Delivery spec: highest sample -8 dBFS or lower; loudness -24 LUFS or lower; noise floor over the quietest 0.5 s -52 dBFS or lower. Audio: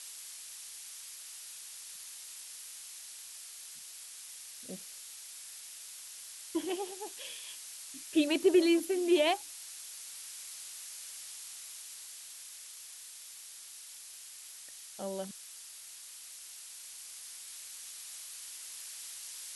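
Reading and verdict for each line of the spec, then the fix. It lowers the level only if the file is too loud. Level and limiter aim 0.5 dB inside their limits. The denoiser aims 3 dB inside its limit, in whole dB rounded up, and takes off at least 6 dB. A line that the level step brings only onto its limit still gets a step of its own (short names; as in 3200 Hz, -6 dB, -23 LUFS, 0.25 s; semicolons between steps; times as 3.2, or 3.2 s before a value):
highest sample -15.5 dBFS: OK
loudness -37.5 LUFS: OK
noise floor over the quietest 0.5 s -49 dBFS: fail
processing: denoiser 6 dB, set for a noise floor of -49 dBFS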